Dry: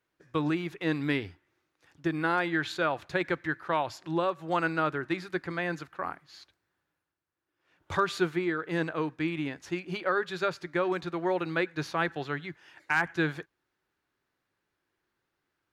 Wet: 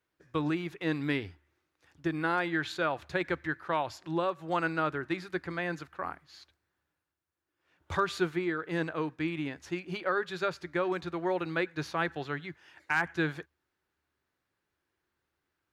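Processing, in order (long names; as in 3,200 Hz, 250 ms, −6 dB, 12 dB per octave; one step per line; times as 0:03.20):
parametric band 75 Hz +13 dB 0.22 octaves
level −2 dB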